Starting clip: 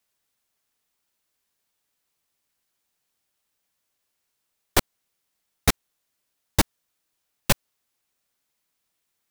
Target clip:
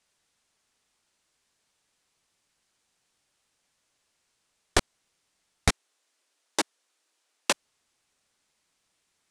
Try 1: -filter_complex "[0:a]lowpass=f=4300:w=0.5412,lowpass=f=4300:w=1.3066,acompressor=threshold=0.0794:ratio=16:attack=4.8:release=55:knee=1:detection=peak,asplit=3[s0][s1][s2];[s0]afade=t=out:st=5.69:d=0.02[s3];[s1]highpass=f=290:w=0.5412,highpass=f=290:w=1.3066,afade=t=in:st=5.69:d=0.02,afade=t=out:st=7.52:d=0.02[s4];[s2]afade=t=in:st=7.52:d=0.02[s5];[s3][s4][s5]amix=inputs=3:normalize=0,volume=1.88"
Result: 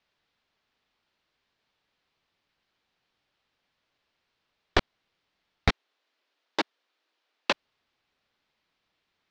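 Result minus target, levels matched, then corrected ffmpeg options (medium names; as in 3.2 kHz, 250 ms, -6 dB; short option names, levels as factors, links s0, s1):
8 kHz band -15.0 dB
-filter_complex "[0:a]lowpass=f=9500:w=0.5412,lowpass=f=9500:w=1.3066,acompressor=threshold=0.0794:ratio=16:attack=4.8:release=55:knee=1:detection=peak,asplit=3[s0][s1][s2];[s0]afade=t=out:st=5.69:d=0.02[s3];[s1]highpass=f=290:w=0.5412,highpass=f=290:w=1.3066,afade=t=in:st=5.69:d=0.02,afade=t=out:st=7.52:d=0.02[s4];[s2]afade=t=in:st=7.52:d=0.02[s5];[s3][s4][s5]amix=inputs=3:normalize=0,volume=1.88"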